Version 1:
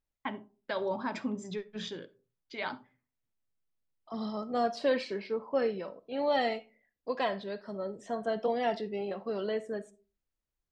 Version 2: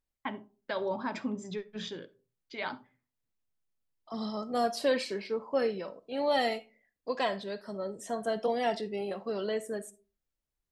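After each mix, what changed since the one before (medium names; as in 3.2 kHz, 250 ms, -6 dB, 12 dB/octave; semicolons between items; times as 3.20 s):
second voice: remove distance through air 130 m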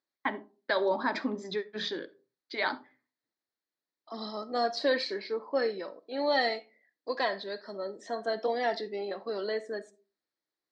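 first voice +5.0 dB; master: add cabinet simulation 310–5500 Hz, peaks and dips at 310 Hz +7 dB, 1.8 kHz +6 dB, 2.8 kHz -9 dB, 4.2 kHz +8 dB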